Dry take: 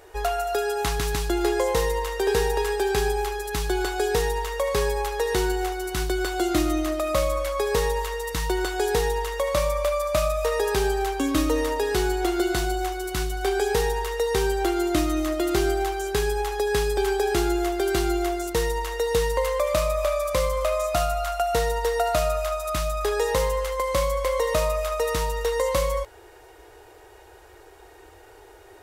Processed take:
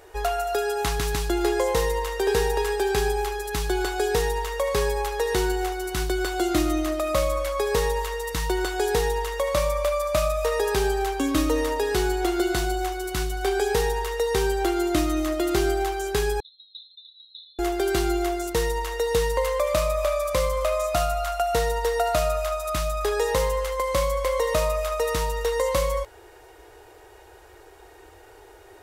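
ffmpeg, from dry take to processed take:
-filter_complex "[0:a]asettb=1/sr,asplit=3[s0][s1][s2];[s0]atrim=end=16.404[s3];[s1]atrim=start=16.4:end=17.59,asetpts=PTS-STARTPTS,afade=t=in:d=0.004:c=qsin,afade=t=out:st=1.186:d=0.004:c=qsin,asuperpass=centerf=3800:order=12:qfactor=6.3[s4];[s2]atrim=start=17.586[s5];[s3][s4]acrossfade=d=0.004:c1=hsin:c2=qsin[s6];[s6][s5]acrossfade=d=0.004:c1=qsin:c2=hsin"

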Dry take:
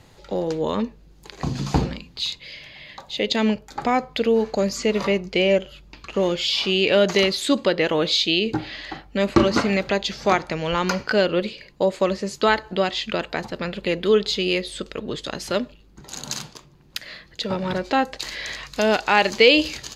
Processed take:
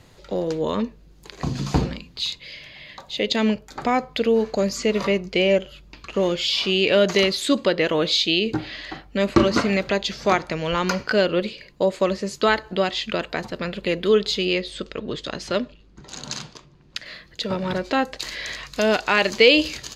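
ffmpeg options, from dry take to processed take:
-filter_complex "[0:a]asettb=1/sr,asplit=3[s0][s1][s2];[s0]atrim=end=14.454[s3];[s1]atrim=start=14.45:end=17.06,asetpts=PTS-STARTPTS,afade=t=in:d=0.004:c=qsin,afade=t=out:st=2.606:d=0.004:c=qsin,lowpass=6300[s4];[s2]atrim=start=17.056[s5];[s3][s4]acrossfade=d=0.004:c1=hsin:c2=qsin[s6];[s6][s5]acrossfade=d=0.004:c1=qsin:c2=hsin,bandreject=f=830:w=12"

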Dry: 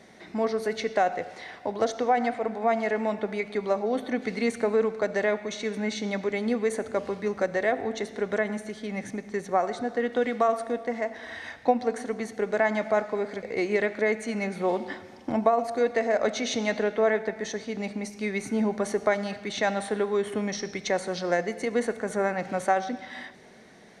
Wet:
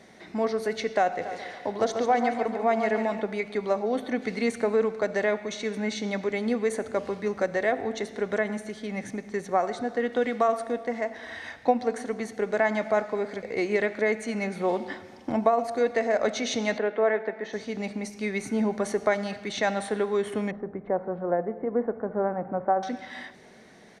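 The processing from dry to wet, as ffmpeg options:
-filter_complex "[0:a]asplit=3[s0][s1][s2];[s0]afade=t=out:st=1.21:d=0.02[s3];[s1]aecho=1:1:141|282|423|564|705:0.422|0.194|0.0892|0.041|0.0189,afade=t=in:st=1.21:d=0.02,afade=t=out:st=3.2:d=0.02[s4];[s2]afade=t=in:st=3.2:d=0.02[s5];[s3][s4][s5]amix=inputs=3:normalize=0,asettb=1/sr,asplit=3[s6][s7][s8];[s6]atrim=end=16.784[s9];[s7]atrim=start=16.78:end=17.53,asetpts=PTS-STARTPTS,afade=t=in:d=0.004:c=qsin,afade=t=out:st=0.746:d=0.004:c=qsin,highpass=260,lowpass=2500[s10];[s8]atrim=start=17.526[s11];[s9][s10]acrossfade=d=0.004:c1=hsin:c2=qsin[s12];[s12][s11]acrossfade=d=0.004:c1=qsin:c2=hsin,asettb=1/sr,asplit=3[s13][s14][s15];[s13]atrim=end=20.514[s16];[s14]atrim=start=20.51:end=22.83,asetpts=PTS-STARTPTS,afade=t=in:d=0.004:c=qsin,afade=t=out:st=2.316:d=0.004:c=qsin,lowpass=f=1200:w=0.5412,lowpass=f=1200:w=1.3066[s17];[s15]atrim=start=22.826[s18];[s16][s17]acrossfade=d=0.004:c1=hsin:c2=qsin[s19];[s19][s18]acrossfade=d=0.004:c1=qsin:c2=hsin"

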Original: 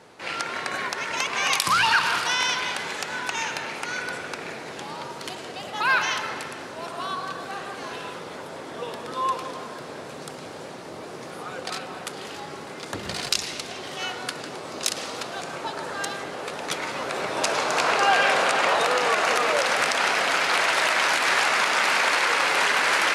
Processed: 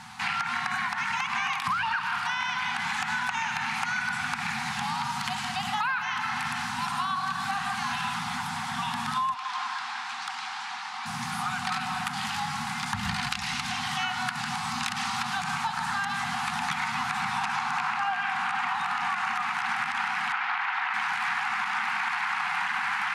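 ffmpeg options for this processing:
-filter_complex "[0:a]asettb=1/sr,asplit=3[s0][s1][s2];[s0]atrim=end=9.344[s3];[s1]atrim=start=9.34:end=11.06,asetpts=PTS-STARTPTS,afade=t=in:d=0.004:c=qsin,afade=t=out:st=1.716:d=0.004:c=qsin,highpass=760,lowpass=5100[s4];[s2]atrim=start=11.056[s5];[s3][s4]acrossfade=d=0.004:c1=hsin:c2=qsin[s6];[s6][s5]acrossfade=d=0.004:c1=qsin:c2=hsin,asettb=1/sr,asplit=3[s7][s8][s9];[s7]atrim=end=20.324[s10];[s8]atrim=start=20.32:end=20.94,asetpts=PTS-STARTPTS,afade=t=in:d=0.004:c=qsin,afade=t=out:st=0.616:d=0.004:c=qsin,highpass=350,lowpass=2800[s11];[s9]atrim=start=20.936[s12];[s10][s11]acrossfade=d=0.004:c1=hsin:c2=qsin[s13];[s13][s12]acrossfade=d=0.004:c1=qsin:c2=hsin,acrossover=split=2600[s14][s15];[s15]acompressor=threshold=0.00891:ratio=4:attack=1:release=60[s16];[s14][s16]amix=inputs=2:normalize=0,afftfilt=real='re*(1-between(b*sr/4096,250,720))':imag='im*(1-between(b*sr/4096,250,720))':win_size=4096:overlap=0.75,acompressor=threshold=0.02:ratio=12,volume=2.66"

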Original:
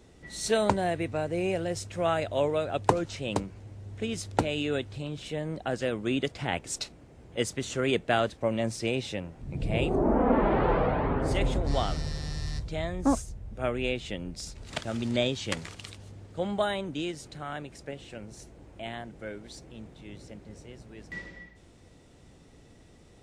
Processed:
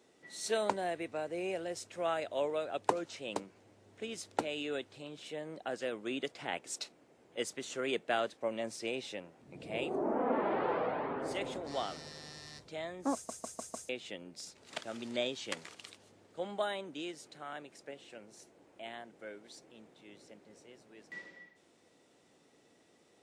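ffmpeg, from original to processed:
-filter_complex "[0:a]asplit=6[s0][s1][s2][s3][s4][s5];[s0]atrim=end=13.292[s6];[s1]atrim=start=13.138:end=13.292[s7];[s2]atrim=start=13.138:end=13.292[s8];[s3]atrim=start=13.138:end=13.292[s9];[s4]atrim=start=13.138:end=13.292[s10];[s5]atrim=start=13.888[s11];[s6][s7]acrossfade=d=0.004:c1=hsin:c2=hsin[s12];[s12][s8]acrossfade=d=0.004:c1=hsin:c2=hsin[s13];[s13][s9]acrossfade=d=0.004:c1=hsin:c2=hsin[s14];[s14][s10]acrossfade=d=0.004:c1=hsin:c2=hsin[s15];[s15][s11]acrossfade=d=0.004:c1=hsin:c2=hsin,highpass=300,volume=0.473"

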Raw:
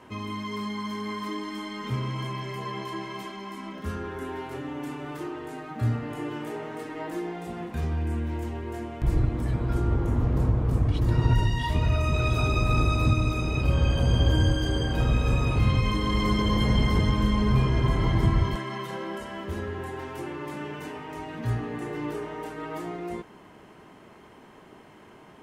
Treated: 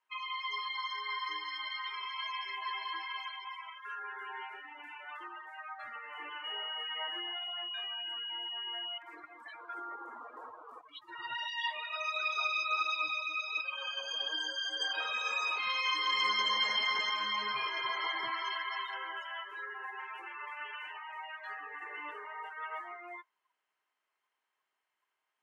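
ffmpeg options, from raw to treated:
-filter_complex "[0:a]asettb=1/sr,asplit=3[s0][s1][s2];[s0]atrim=end=1.104[s3];[s1]atrim=start=1.1:end=5.11,asetpts=PTS-STARTPTS,afade=t=in:d=0.004:c=qsin,afade=t=out:st=4.006:d=0.004:c=qsin,bandreject=f=1200:w=12[s4];[s2]atrim=start=5.106[s5];[s3][s4]acrossfade=d=0.004:c1=hsin:c2=qsin[s6];[s6][s5]acrossfade=d=0.004:c1=qsin:c2=hsin,asettb=1/sr,asplit=3[s7][s8][s9];[s7]atrim=end=6.444[s10];[s8]atrim=start=6.44:end=8.98,asetpts=PTS-STARTPTS,afade=t=in:d=0.004:c=qsin,afade=t=out:st=2.536:d=0.004:c=qsin,aeval=exprs='val(0)+0.00891*sin(2*PI*2900*n/s)':c=same[s11];[s9]atrim=start=8.976[s12];[s10][s11]acrossfade=d=0.004:c1=hsin:c2=qsin[s13];[s13][s12]acrossfade=d=0.004:c1=qsin:c2=hsin,asettb=1/sr,asplit=3[s14][s15][s16];[s14]atrim=end=10.814[s17];[s15]atrim=start=10.81:end=14.8,asetpts=PTS-STARTPTS,afade=t=in:d=0.004:c=qsin,afade=t=out:st=3.986:d=0.004:c=qsin,flanger=delay=5.7:depth=3.7:regen=17:speed=1.4:shape=triangular[s18];[s16]atrim=start=14.796[s19];[s17][s18]acrossfade=d=0.004:c1=hsin:c2=qsin[s20];[s20][s19]acrossfade=d=0.004:c1=qsin:c2=hsin,highpass=1300,afftdn=nr=31:nf=-42,volume=1.58"

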